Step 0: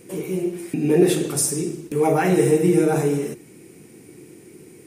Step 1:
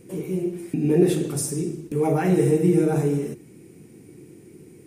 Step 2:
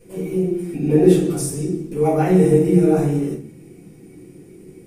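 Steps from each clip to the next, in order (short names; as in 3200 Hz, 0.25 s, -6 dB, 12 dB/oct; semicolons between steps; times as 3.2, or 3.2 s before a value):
low shelf 340 Hz +10 dB; gain -7 dB
shoebox room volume 210 m³, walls furnished, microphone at 5 m; gain -7 dB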